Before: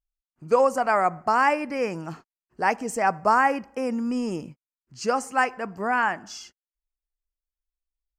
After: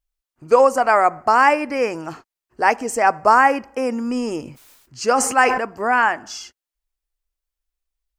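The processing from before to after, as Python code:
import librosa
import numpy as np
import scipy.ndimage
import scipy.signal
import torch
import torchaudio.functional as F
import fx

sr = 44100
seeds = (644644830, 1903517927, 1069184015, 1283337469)

y = fx.peak_eq(x, sr, hz=180.0, db=-12.5, octaves=0.48)
y = fx.sustainer(y, sr, db_per_s=57.0, at=(4.42, 5.64))
y = y * 10.0 ** (6.5 / 20.0)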